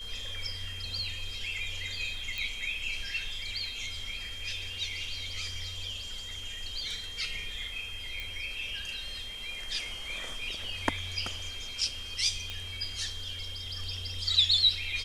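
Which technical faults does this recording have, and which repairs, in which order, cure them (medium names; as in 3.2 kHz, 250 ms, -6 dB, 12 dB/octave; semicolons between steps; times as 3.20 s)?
whine 3.2 kHz -40 dBFS
2.38 s: pop
8.20 s: pop
12.50 s: pop -22 dBFS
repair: de-click; band-stop 3.2 kHz, Q 30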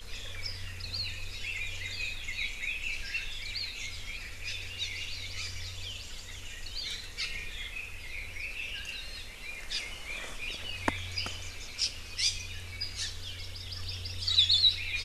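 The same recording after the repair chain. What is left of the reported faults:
8.20 s: pop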